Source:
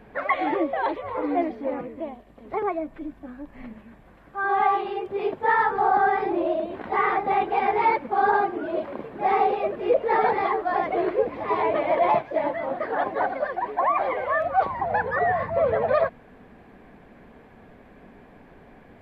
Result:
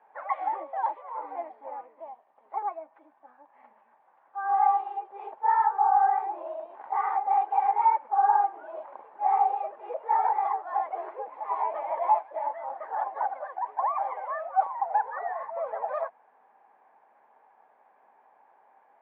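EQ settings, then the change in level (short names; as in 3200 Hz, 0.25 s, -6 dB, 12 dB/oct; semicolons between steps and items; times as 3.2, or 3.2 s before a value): ladder band-pass 900 Hz, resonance 70%; notch 720 Hz, Q 12; +1.5 dB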